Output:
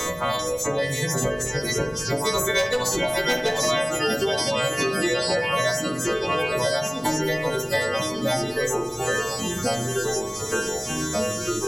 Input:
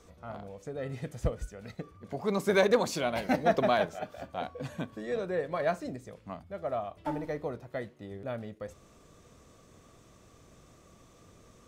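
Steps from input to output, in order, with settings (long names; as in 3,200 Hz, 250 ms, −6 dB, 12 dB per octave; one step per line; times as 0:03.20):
every partial snapped to a pitch grid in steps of 2 semitones
in parallel at +2 dB: downward compressor 12 to 1, threshold −37 dBFS, peak gain reduction 18.5 dB
on the sum: EQ curve with evenly spaced ripples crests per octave 1.1, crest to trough 9 dB
delay with pitch and tempo change per echo 392 ms, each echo −2 semitones, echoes 3
reverb reduction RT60 1.1 s
hard clipping −15.5 dBFS, distortion −20 dB
high-shelf EQ 2,200 Hz +9 dB
bucket-brigade delay 64 ms, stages 1,024, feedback 55%, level −6.5 dB
on a send at −6.5 dB: convolution reverb RT60 0.60 s, pre-delay 3 ms
on the sum: multiband upward and downward compressor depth 100%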